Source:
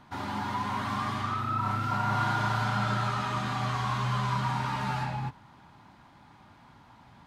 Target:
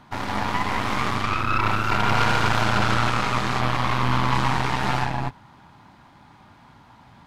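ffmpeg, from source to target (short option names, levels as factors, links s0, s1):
-filter_complex "[0:a]asettb=1/sr,asplit=3[s0][s1][s2];[s0]atrim=end=3.604[s3];[s1]atrim=start=3.6:end=4.34,asetpts=PTS-STARTPTS,afade=t=in:d=0.004:c=qsin,afade=t=out:st=0.736:d=0.004:c=qsin,equalizer=f=6700:w=1.4:g=-7.5[s4];[s2]atrim=start=4.336[s5];[s3][s4]acrossfade=d=0.004:c1=hsin:c2=qsin[s6];[s6][s5]acrossfade=d=0.004:c1=qsin:c2=hsin,aeval=exprs='0.178*(cos(1*acos(clip(val(0)/0.178,-1,1)))-cos(1*PI/2))+0.0562*(cos(6*acos(clip(val(0)/0.178,-1,1)))-cos(6*PI/2))':c=same,volume=1.68"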